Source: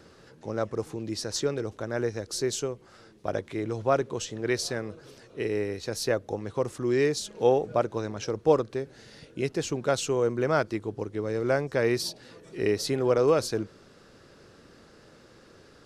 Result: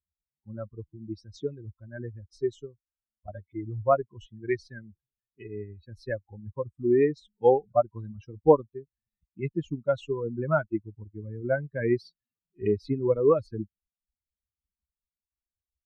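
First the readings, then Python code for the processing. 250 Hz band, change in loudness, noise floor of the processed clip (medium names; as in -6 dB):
-1.0 dB, +0.5 dB, under -85 dBFS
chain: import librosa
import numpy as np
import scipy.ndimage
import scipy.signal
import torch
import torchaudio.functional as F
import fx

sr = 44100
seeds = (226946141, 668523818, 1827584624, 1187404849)

y = fx.bin_expand(x, sr, power=3.0)
y = scipy.signal.sosfilt(scipy.signal.butter(2, 1500.0, 'lowpass', fs=sr, output='sos'), y)
y = y * librosa.db_to_amplitude(7.0)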